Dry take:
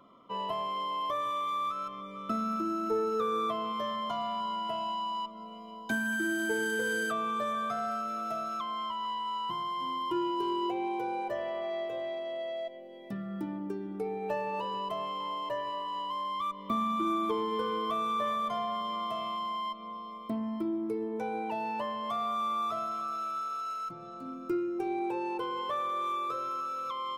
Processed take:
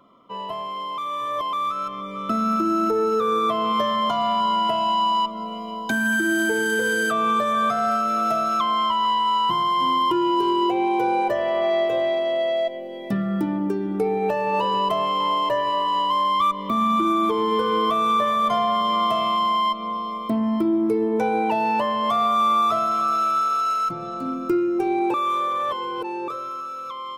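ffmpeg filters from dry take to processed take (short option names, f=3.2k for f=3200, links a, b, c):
-filter_complex "[0:a]asplit=5[a][b][c][d][e];[a]atrim=end=0.982[f];[b]atrim=start=0.978:end=1.532,asetpts=PTS-STARTPTS,areverse[g];[c]atrim=start=1.528:end=25.142[h];[d]atrim=start=25.138:end=26.282,asetpts=PTS-STARTPTS,areverse[i];[e]atrim=start=26.278[j];[f][g]acrossfade=d=0.004:c1=hsin:c2=hsin[k];[k][h]acrossfade=d=0.004:c1=hsin:c2=hsin[l];[l][i]acrossfade=d=0.004:c1=hsin:c2=hsin[m];[m][j]acrossfade=d=0.004:c1=hsin:c2=hsin,dynaudnorm=f=130:g=31:m=11dB,alimiter=limit=-16dB:level=0:latency=1:release=320,volume=3dB"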